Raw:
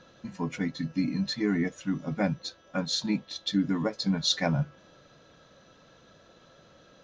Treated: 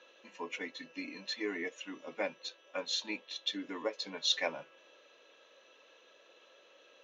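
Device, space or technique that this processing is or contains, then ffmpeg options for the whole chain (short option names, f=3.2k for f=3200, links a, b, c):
phone speaker on a table: -af "highpass=f=400:w=0.5412,highpass=f=400:w=1.3066,equalizer=f=720:t=q:w=4:g=-7,equalizer=f=1.4k:t=q:w=4:g=-7,equalizer=f=2.7k:t=q:w=4:g=9,equalizer=f=4.8k:t=q:w=4:g=-9,lowpass=f=6.7k:w=0.5412,lowpass=f=6.7k:w=1.3066,volume=-2dB"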